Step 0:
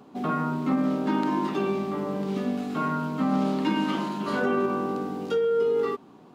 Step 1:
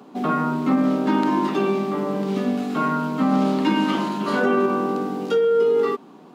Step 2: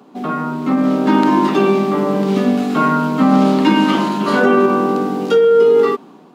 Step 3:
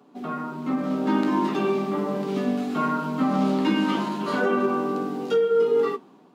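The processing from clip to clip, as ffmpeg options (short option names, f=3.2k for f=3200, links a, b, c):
-af "highpass=f=160:w=0.5412,highpass=f=160:w=1.3066,volume=5.5dB"
-af "dynaudnorm=f=580:g=3:m=11.5dB"
-af "flanger=delay=6.9:depth=8.7:regen=-47:speed=0.4:shape=sinusoidal,volume=-6dB"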